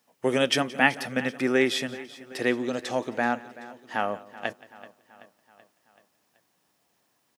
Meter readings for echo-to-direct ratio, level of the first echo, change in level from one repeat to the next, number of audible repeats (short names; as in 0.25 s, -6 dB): -15.0 dB, -20.5 dB, no steady repeat, 5